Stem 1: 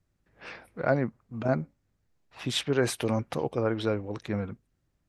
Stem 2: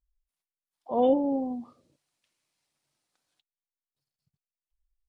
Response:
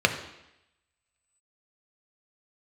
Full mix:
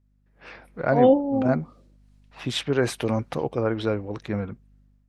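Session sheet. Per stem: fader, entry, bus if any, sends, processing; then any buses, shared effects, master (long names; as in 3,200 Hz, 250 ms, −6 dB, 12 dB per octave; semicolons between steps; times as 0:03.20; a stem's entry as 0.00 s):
−6.0 dB, 0.00 s, no send, mains hum 50 Hz, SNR 28 dB
−2.5 dB, 0.00 s, no send, amplitude tremolo 2.8 Hz, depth 56%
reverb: not used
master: high-shelf EQ 5,700 Hz −6.5 dB; automatic gain control gain up to 9 dB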